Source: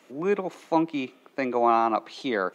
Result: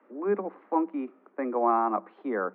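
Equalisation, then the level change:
Chebyshev high-pass filter 190 Hz, order 10
low-pass filter 1,600 Hz 24 dB per octave
notch filter 660 Hz, Q 15
−2.0 dB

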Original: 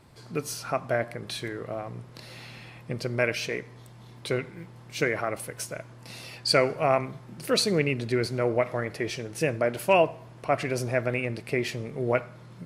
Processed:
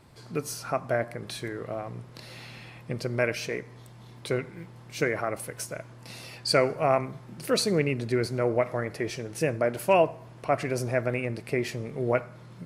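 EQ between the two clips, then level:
dynamic equaliser 3,200 Hz, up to −5 dB, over −45 dBFS, Q 1.2
0.0 dB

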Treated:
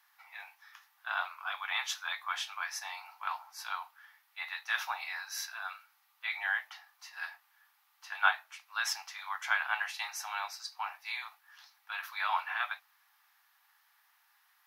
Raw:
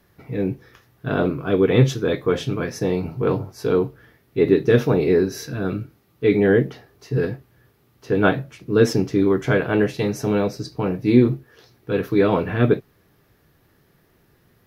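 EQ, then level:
Butterworth high-pass 790 Hz 72 dB per octave
−3.5 dB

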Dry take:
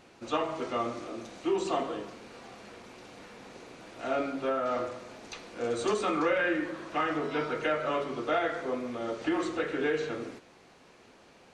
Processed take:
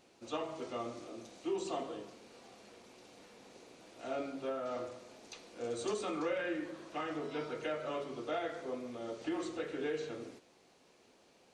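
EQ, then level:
dynamic equaliser 110 Hz, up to +5 dB, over −52 dBFS, Q 1.2
low-shelf EQ 230 Hz −10.5 dB
parametric band 1,500 Hz −8.5 dB 2 octaves
−3.5 dB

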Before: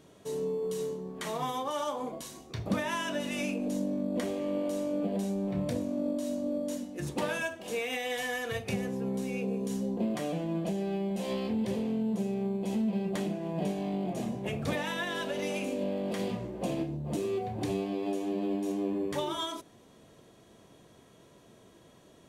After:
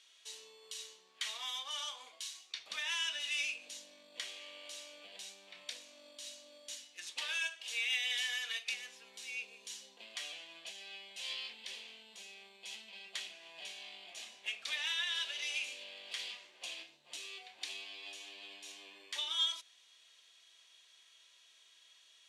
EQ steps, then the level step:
four-pole ladder band-pass 4,000 Hz, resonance 25%
+15.0 dB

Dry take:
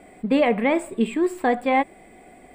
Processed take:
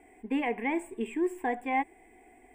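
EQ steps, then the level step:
phaser with its sweep stopped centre 860 Hz, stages 8
−7.0 dB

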